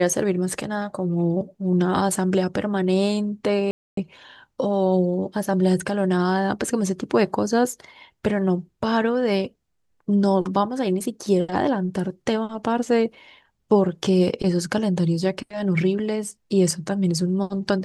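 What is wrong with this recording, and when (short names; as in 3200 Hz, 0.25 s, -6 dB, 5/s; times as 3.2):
3.71–3.97 gap 0.263 s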